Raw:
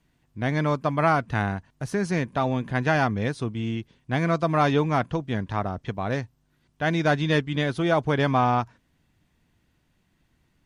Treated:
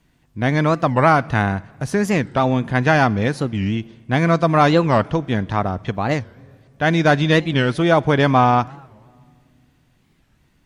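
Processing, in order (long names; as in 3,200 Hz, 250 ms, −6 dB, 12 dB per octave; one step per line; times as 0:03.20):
on a send at −22 dB: high-shelf EQ 4,200 Hz +10.5 dB + convolution reverb RT60 1.9 s, pre-delay 4 ms
on the sum: wow of a warped record 45 rpm, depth 250 cents
level +7 dB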